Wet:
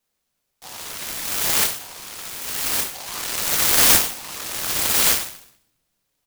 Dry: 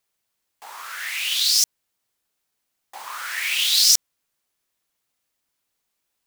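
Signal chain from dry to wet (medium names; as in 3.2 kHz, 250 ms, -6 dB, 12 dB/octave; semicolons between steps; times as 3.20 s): 0.92–1.63 s: graphic EQ with 31 bands 1.6 kHz -4 dB, 2.5 kHz -9 dB, 4 kHz -4 dB, 6.3 kHz -9 dB; on a send: delay 1167 ms -3.5 dB; on the sum: simulated room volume 370 m³, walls mixed, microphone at 1.8 m; delay time shaken by noise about 4.2 kHz, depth 0.22 ms; trim -1 dB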